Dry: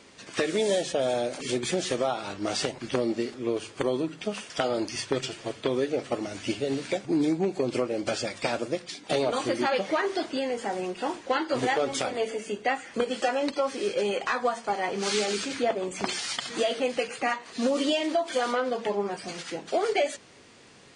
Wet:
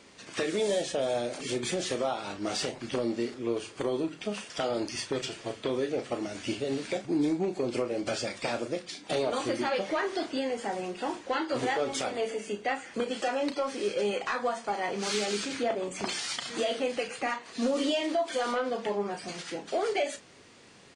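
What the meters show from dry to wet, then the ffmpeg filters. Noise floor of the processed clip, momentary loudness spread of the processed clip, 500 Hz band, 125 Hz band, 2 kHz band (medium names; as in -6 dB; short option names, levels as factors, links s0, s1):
-50 dBFS, 5 LU, -3.0 dB, -3.0 dB, -3.0 dB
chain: -filter_complex "[0:a]asplit=2[s0][s1];[s1]alimiter=limit=0.112:level=0:latency=1:release=28,volume=0.75[s2];[s0][s2]amix=inputs=2:normalize=0,asoftclip=type=tanh:threshold=0.299,asplit=2[s3][s4];[s4]adelay=34,volume=0.316[s5];[s3][s5]amix=inputs=2:normalize=0,volume=0.447"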